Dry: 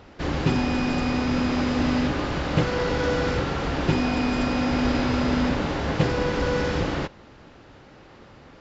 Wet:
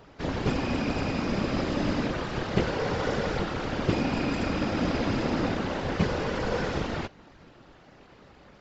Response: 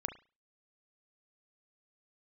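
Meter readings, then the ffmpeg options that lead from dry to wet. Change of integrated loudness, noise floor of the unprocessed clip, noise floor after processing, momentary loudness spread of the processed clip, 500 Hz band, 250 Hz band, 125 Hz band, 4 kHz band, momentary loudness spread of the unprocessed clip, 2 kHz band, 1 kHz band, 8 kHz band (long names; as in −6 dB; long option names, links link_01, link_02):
−4.5 dB, −49 dBFS, −54 dBFS, 3 LU, −3.5 dB, −5.0 dB, −4.5 dB, −4.5 dB, 3 LU, −4.5 dB, −4.0 dB, can't be measured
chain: -af "tremolo=f=290:d=0.75,afftfilt=real='hypot(re,im)*cos(2*PI*random(0))':imag='hypot(re,im)*sin(2*PI*random(1))':win_size=512:overlap=0.75,volume=5dB"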